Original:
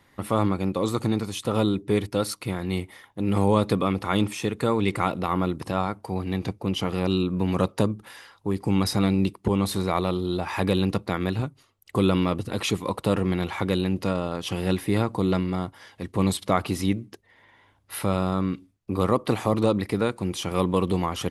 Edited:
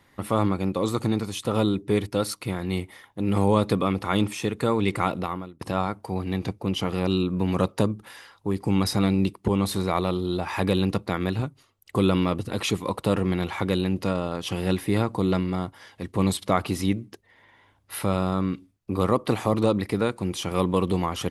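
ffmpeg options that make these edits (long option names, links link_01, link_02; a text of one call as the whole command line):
ffmpeg -i in.wav -filter_complex "[0:a]asplit=2[link_01][link_02];[link_01]atrim=end=5.61,asetpts=PTS-STARTPTS,afade=type=out:start_time=5.2:duration=0.41:curve=qua:silence=0.0749894[link_03];[link_02]atrim=start=5.61,asetpts=PTS-STARTPTS,afade=type=in:duration=0.004:curve=hsin:silence=0.0749894[link_04];[link_03][link_04]concat=n=2:v=0:a=1" out.wav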